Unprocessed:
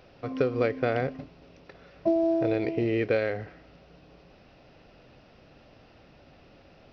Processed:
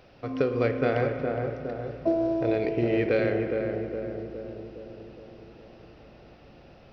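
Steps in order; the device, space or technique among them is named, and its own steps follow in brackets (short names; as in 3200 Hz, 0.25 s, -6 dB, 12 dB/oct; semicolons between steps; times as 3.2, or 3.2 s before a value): dub delay into a spring reverb (darkening echo 0.414 s, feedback 62%, low-pass 1100 Hz, level -3.5 dB; spring tank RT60 2.2 s, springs 34/50 ms, chirp 65 ms, DRR 7.5 dB)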